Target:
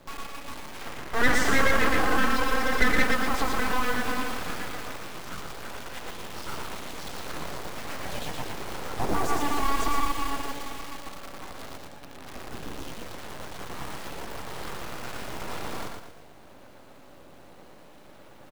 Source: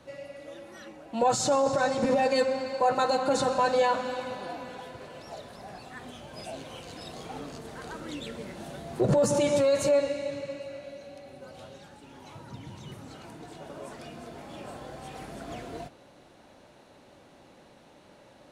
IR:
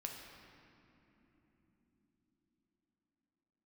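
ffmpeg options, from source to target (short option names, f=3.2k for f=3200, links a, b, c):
-filter_complex "[0:a]alimiter=limit=-23dB:level=0:latency=1:release=67,aemphasis=mode=reproduction:type=50fm,acrusher=bits=8:dc=4:mix=0:aa=0.000001,asettb=1/sr,asplit=3[a][b][c];[a]atrim=end=0.814[d];[b]atrim=start=0.81:end=3.04,asetpts=PTS-STARTPTS,afade=t=in:d=0.004:c=qsin,afade=t=out:st=2.226:d=0.004:c=qsin,equalizer=f=1k:w=3:g=15[e];[c]atrim=start=3.036[f];[d][e]acrossfade=d=0.004:c1=hsin:c2=qsin[g];[g][f]acrossfade=d=0.004:c1=qsin:c2=hsin,aecho=1:1:116|232|348|464|580:0.668|0.281|0.118|0.0495|0.0208,aeval=exprs='abs(val(0))':c=same,volume=5.5dB"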